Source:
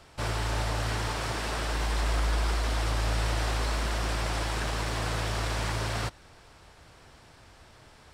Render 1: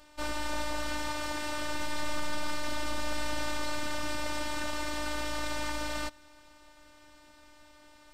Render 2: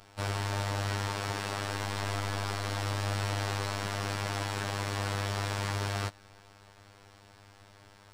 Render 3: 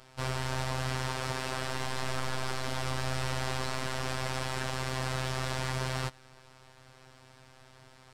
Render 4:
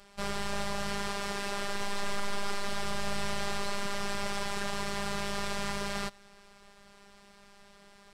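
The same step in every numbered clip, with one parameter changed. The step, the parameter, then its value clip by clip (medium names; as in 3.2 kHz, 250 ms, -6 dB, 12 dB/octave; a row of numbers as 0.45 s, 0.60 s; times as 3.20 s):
robot voice, frequency: 300 Hz, 100 Hz, 130 Hz, 200 Hz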